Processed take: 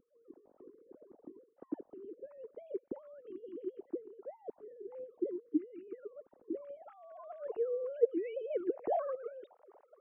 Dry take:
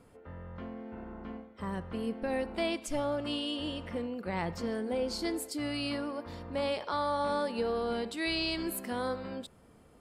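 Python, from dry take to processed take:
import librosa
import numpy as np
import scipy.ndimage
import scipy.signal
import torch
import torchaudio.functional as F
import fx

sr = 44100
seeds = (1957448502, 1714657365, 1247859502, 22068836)

y = fx.sine_speech(x, sr)
y = fx.filter_sweep_lowpass(y, sr, from_hz=260.0, to_hz=860.0, start_s=6.42, end_s=9.7, q=2.3)
y = fx.hpss(y, sr, part='harmonic', gain_db=-17)
y = F.gain(torch.from_numpy(y), 7.0).numpy()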